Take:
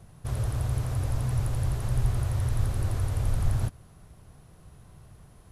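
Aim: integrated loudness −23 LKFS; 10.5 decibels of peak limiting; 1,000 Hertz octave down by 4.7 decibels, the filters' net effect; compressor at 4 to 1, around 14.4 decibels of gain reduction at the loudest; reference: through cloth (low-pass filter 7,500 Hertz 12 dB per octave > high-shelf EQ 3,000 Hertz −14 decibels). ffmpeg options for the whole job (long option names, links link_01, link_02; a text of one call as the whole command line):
ffmpeg -i in.wav -af "equalizer=frequency=1000:width_type=o:gain=-4.5,acompressor=threshold=-37dB:ratio=4,alimiter=level_in=14dB:limit=-24dB:level=0:latency=1,volume=-14dB,lowpass=7500,highshelf=frequency=3000:gain=-14,volume=25dB" out.wav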